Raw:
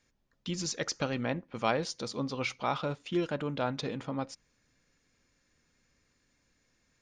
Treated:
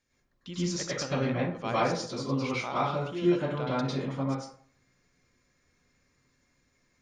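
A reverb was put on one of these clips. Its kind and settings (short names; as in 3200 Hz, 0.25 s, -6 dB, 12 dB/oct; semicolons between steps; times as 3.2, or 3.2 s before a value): plate-style reverb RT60 0.53 s, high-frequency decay 0.5×, pre-delay 90 ms, DRR -8.5 dB; gain -6.5 dB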